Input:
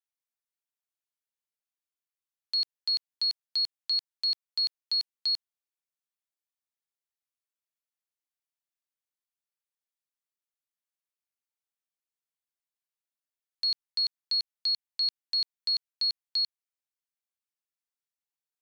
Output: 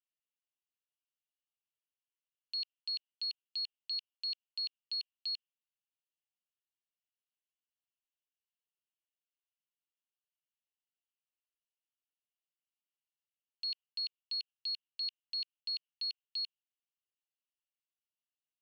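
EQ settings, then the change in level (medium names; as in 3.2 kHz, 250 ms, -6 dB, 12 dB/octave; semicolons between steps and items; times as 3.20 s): dynamic bell 2.9 kHz, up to +6 dB, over -46 dBFS, Q 1.9; ladder band-pass 3 kHz, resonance 80%; 0.0 dB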